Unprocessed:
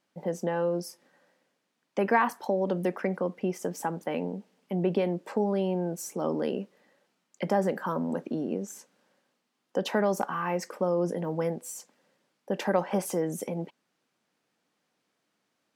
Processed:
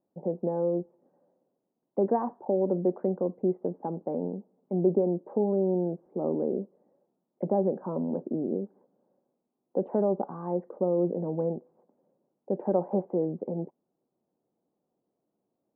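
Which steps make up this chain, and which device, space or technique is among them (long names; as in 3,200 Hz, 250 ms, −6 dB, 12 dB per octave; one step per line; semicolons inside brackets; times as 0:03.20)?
under water (low-pass filter 770 Hz 24 dB per octave; parametric band 370 Hz +5 dB 0.23 octaves)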